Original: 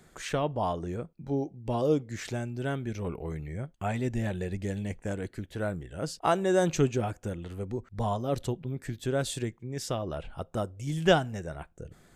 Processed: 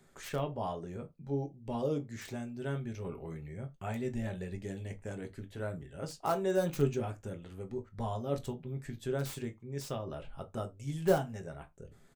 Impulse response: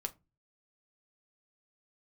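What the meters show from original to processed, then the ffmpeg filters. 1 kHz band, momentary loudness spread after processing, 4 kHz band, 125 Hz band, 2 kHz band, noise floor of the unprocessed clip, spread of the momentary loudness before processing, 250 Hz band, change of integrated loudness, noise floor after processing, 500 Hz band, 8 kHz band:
−7.0 dB, 13 LU, −10.5 dB, −5.5 dB, −9.0 dB, −60 dBFS, 12 LU, −6.0 dB, −5.5 dB, −61 dBFS, −5.0 dB, −8.5 dB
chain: -filter_complex "[0:a]acrossover=split=1600[link_01][link_02];[link_02]aeval=exprs='(mod(35.5*val(0)+1,2)-1)/35.5':channel_layout=same[link_03];[link_01][link_03]amix=inputs=2:normalize=0,asplit=2[link_04][link_05];[link_05]adelay=21,volume=-13.5dB[link_06];[link_04][link_06]amix=inputs=2:normalize=0[link_07];[1:a]atrim=start_sample=2205,atrim=end_sample=4410[link_08];[link_07][link_08]afir=irnorm=-1:irlink=0,volume=-6dB"

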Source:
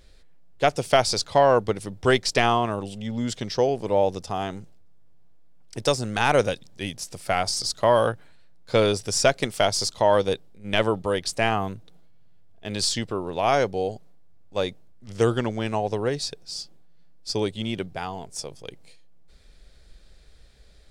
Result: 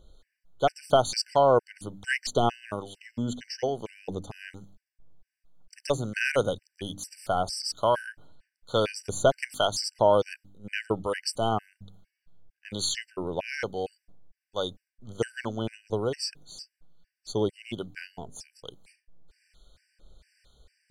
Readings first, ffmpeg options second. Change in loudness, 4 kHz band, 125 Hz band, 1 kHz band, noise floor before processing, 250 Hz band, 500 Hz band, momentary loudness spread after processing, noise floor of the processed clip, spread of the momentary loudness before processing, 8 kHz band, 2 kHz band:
−4.5 dB, −5.5 dB, −6.0 dB, −4.5 dB, −51 dBFS, −6.0 dB, −4.5 dB, 19 LU, below −85 dBFS, 14 LU, −6.0 dB, −5.0 dB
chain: -filter_complex "[0:a]acrossover=split=950[link_01][link_02];[link_01]aeval=exprs='val(0)*(1-0.5/2+0.5/2*cos(2*PI*1.2*n/s))':channel_layout=same[link_03];[link_02]aeval=exprs='val(0)*(1-0.5/2-0.5/2*cos(2*PI*1.2*n/s))':channel_layout=same[link_04];[link_03][link_04]amix=inputs=2:normalize=0,bandreject=frequency=49.21:width_type=h:width=4,bandreject=frequency=98.42:width_type=h:width=4,bandreject=frequency=147.63:width_type=h:width=4,bandreject=frequency=196.84:width_type=h:width=4,bandreject=frequency=246.05:width_type=h:width=4,bandreject=frequency=295.26:width_type=h:width=4,afftfilt=real='re*gt(sin(2*PI*2.2*pts/sr)*(1-2*mod(floor(b*sr/1024/1500),2)),0)':imag='im*gt(sin(2*PI*2.2*pts/sr)*(1-2*mod(floor(b*sr/1024/1500),2)),0)':win_size=1024:overlap=0.75"

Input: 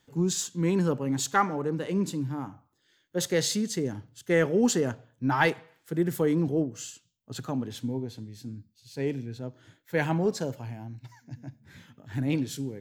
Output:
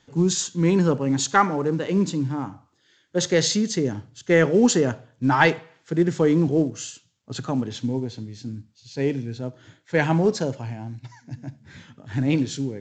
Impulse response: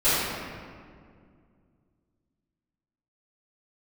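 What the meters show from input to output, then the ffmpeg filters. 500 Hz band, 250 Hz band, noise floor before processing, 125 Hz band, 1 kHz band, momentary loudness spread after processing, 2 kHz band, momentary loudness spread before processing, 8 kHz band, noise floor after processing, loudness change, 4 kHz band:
+6.0 dB, +6.0 dB, −70 dBFS, +6.0 dB, +6.0 dB, 17 LU, +6.0 dB, 17 LU, +5.0 dB, −64 dBFS, +6.0 dB, +6.0 dB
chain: -filter_complex "[0:a]asplit=2[link_01][link_02];[1:a]atrim=start_sample=2205,afade=type=out:start_time=0.14:duration=0.01,atrim=end_sample=6615[link_03];[link_02][link_03]afir=irnorm=-1:irlink=0,volume=-34dB[link_04];[link_01][link_04]amix=inputs=2:normalize=0,volume=6dB" -ar 16000 -c:a pcm_mulaw

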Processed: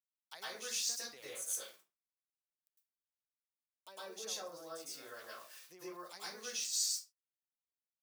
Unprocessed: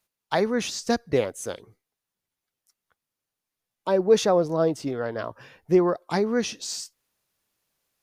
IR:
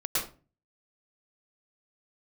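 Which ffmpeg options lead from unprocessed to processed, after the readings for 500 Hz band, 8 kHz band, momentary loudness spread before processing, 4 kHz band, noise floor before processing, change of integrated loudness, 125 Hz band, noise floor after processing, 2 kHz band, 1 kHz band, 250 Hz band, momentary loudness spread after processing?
−27.5 dB, −1.5 dB, 15 LU, −6.0 dB, below −85 dBFS, −15.0 dB, −37.0 dB, below −85 dBFS, −14.5 dB, −21.0 dB, −31.5 dB, 17 LU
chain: -filter_complex "[0:a]aeval=exprs='val(0)*gte(abs(val(0)),0.00473)':channel_layout=same,equalizer=frequency=140:width_type=o:width=2.7:gain=-3.5,acrossover=split=160[link_01][link_02];[link_02]acompressor=threshold=-31dB:ratio=2.5[link_03];[link_01][link_03]amix=inputs=2:normalize=0,aderivative[link_04];[1:a]atrim=start_sample=2205,afade=type=out:start_time=0.31:duration=0.01,atrim=end_sample=14112[link_05];[link_04][link_05]afir=irnorm=-1:irlink=0,volume=-5dB"

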